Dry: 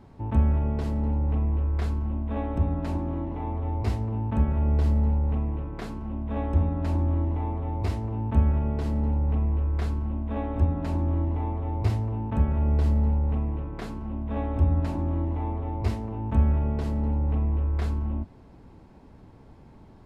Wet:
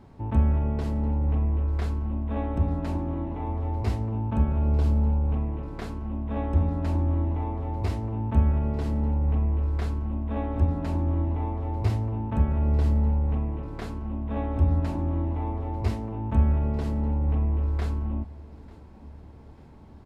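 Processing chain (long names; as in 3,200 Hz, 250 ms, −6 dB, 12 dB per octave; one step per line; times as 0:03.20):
0:04.11–0:05.34: notch filter 1,900 Hz, Q 6.8
on a send: repeating echo 893 ms, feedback 50%, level −21 dB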